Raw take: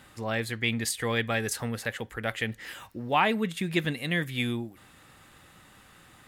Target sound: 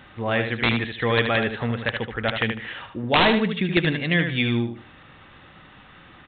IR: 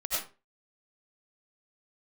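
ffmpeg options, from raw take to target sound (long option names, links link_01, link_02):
-af "aresample=8000,aeval=exprs='(mod(6.31*val(0)+1,2)-1)/6.31':channel_layout=same,aresample=44100,aecho=1:1:76|152|228:0.447|0.121|0.0326,volume=6.5dB"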